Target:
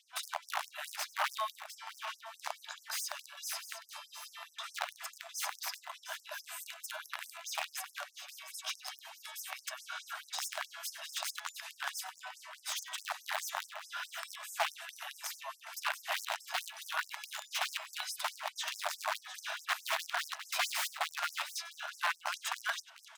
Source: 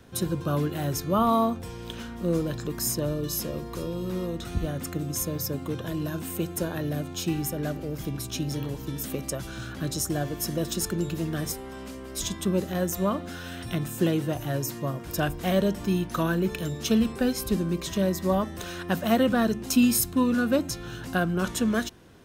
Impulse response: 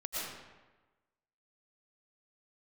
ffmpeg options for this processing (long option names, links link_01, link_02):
-filter_complex "[0:a]equalizer=frequency=77:width=2.3:gain=14.5,acrossover=split=230|1600|3800[link_01][link_02][link_03][link_04];[link_02]acompressor=threshold=-39dB:ratio=5[link_05];[link_01][link_05][link_03][link_04]amix=inputs=4:normalize=0,asetrate=42336,aresample=44100,aeval=exprs='(mod(11.2*val(0)+1,2)-1)/11.2':channel_layout=same,asplit=2[link_06][link_07];[link_07]highpass=frequency=720:poles=1,volume=9dB,asoftclip=type=tanh:threshold=-20.5dB[link_08];[link_06][link_08]amix=inputs=2:normalize=0,lowpass=frequency=1800:poles=1,volume=-6dB,aecho=1:1:97|706:0.119|0.282,afftfilt=real='re*gte(b*sr/1024,560*pow(5300/560,0.5+0.5*sin(2*PI*4.7*pts/sr)))':imag='im*gte(b*sr/1024,560*pow(5300/560,0.5+0.5*sin(2*PI*4.7*pts/sr)))':win_size=1024:overlap=0.75,volume=1dB"